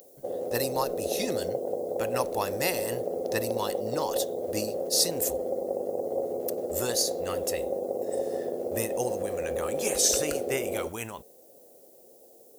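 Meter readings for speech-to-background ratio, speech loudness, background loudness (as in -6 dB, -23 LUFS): 1.0 dB, -31.0 LUFS, -32.0 LUFS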